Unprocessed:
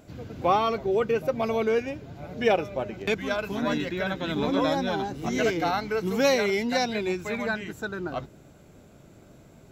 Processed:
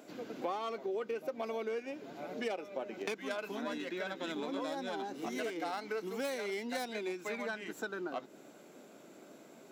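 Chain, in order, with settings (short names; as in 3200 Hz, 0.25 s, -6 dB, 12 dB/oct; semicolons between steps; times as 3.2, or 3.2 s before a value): tracing distortion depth 0.12 ms; compressor 6:1, threshold -35 dBFS, peak gain reduction 17 dB; HPF 240 Hz 24 dB/oct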